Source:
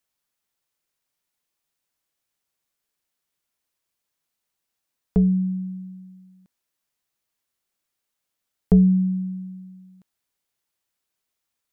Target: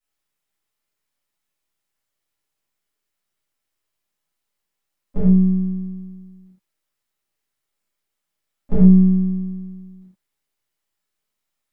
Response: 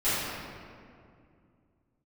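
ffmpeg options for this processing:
-filter_complex "[0:a]aeval=exprs='if(lt(val(0),0),0.708*val(0),val(0))':c=same,asplit=2[a][b];[b]asetrate=58866,aresample=44100,atempo=0.749154,volume=-18dB[c];[a][c]amix=inputs=2:normalize=0[d];[1:a]atrim=start_sample=2205,afade=t=out:st=0.18:d=0.01,atrim=end_sample=8379[e];[d][e]afir=irnorm=-1:irlink=0,volume=-8.5dB"

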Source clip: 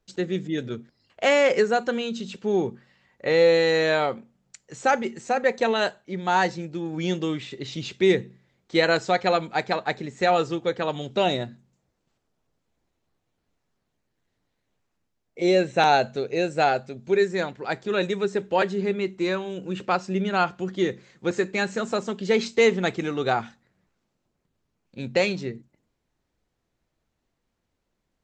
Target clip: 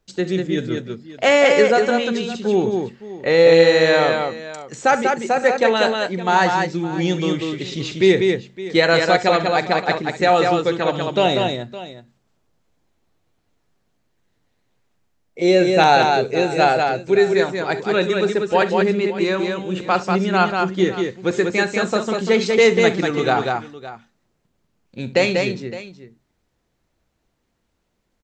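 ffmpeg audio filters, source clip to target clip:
-af "aecho=1:1:42|67|192|563:0.126|0.15|0.631|0.158,volume=5dB"

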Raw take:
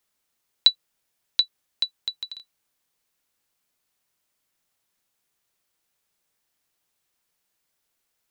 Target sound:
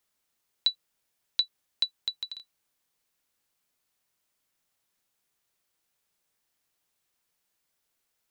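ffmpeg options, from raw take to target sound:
-af "alimiter=limit=-11dB:level=0:latency=1:release=71,volume=-2dB"

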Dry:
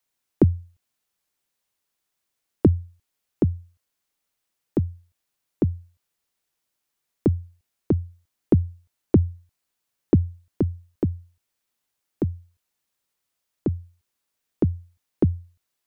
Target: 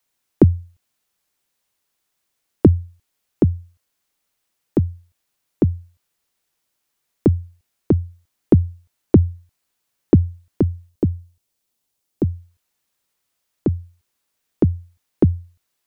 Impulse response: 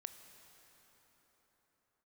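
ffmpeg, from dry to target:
-filter_complex "[0:a]asettb=1/sr,asplit=3[a][b][c];[a]atrim=end=10.894[d];[b]atrim=start=10.89:end=12.25,asetpts=PTS-STARTPTS,afade=t=in:d=0.004:c=qsin,afade=t=out:st=1.356:d=0.004:c=qsin,equalizer=f=1.6k:t=o:w=1.9:g=-7[e];[c]atrim=start=12.246[f];[d][e]acrossfade=d=0.004:c1=hsin:c2=qsin[g];[g][f]acrossfade=d=0.004:c1=qsin:c2=hsin,volume=5dB"

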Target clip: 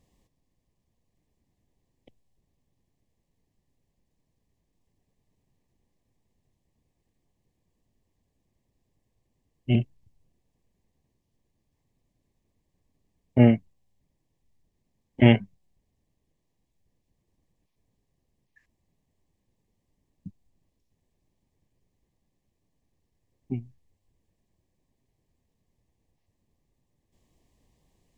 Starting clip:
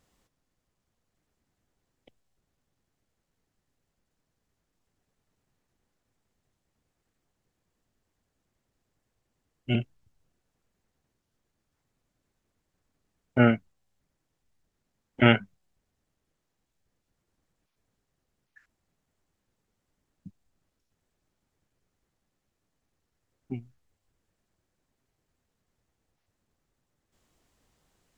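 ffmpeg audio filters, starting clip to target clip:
-af "asuperstop=centerf=1400:order=4:qfactor=2.6,lowshelf=f=430:g=8.5,volume=-2.5dB"

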